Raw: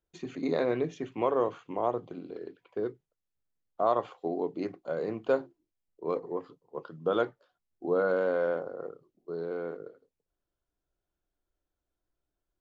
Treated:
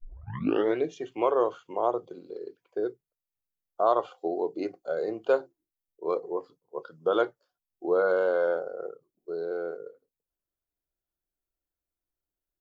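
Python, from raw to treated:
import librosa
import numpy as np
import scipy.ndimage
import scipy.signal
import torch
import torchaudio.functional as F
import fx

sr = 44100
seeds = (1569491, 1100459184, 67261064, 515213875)

y = fx.tape_start_head(x, sr, length_s=0.76)
y = fx.noise_reduce_blind(y, sr, reduce_db=11)
y = y * 10.0 ** (3.0 / 20.0)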